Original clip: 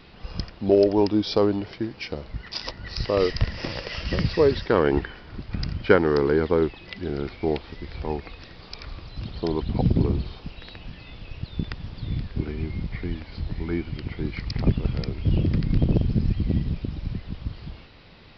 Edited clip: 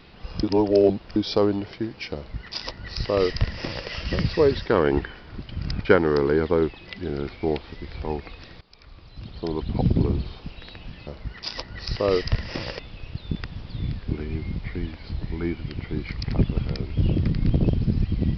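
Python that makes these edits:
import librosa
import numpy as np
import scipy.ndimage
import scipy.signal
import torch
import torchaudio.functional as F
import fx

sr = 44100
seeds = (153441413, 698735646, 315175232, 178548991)

y = fx.edit(x, sr, fx.reverse_span(start_s=0.43, length_s=0.73),
    fx.duplicate(start_s=2.16, length_s=1.72, to_s=11.07),
    fx.reverse_span(start_s=5.49, length_s=0.36),
    fx.fade_in_from(start_s=8.61, length_s=1.22, floor_db=-18.5), tone=tone)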